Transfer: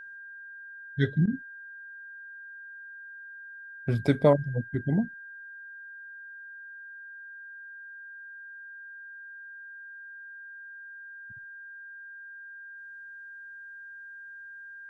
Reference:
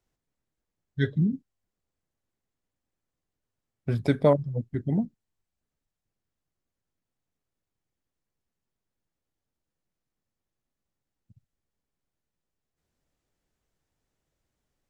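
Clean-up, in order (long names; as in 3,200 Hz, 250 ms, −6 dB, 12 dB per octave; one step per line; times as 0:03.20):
notch filter 1,600 Hz, Q 30
repair the gap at 0:01.26, 13 ms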